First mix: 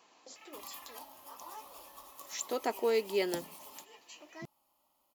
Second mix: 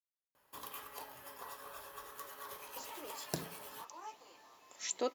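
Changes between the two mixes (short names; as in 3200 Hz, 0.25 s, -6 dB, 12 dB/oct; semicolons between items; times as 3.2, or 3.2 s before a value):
speech: entry +2.50 s; background: remove fixed phaser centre 440 Hz, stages 6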